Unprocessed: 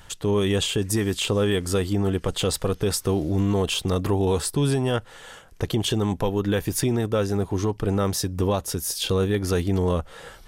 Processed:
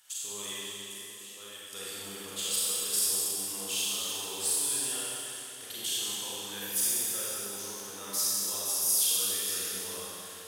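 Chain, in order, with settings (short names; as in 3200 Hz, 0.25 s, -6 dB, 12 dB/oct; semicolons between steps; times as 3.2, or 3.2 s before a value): 0.53–1.73 gate -19 dBFS, range -18 dB; differentiator; one-sided clip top -18.5 dBFS; Schroeder reverb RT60 3 s, combs from 31 ms, DRR -8.5 dB; gain -5 dB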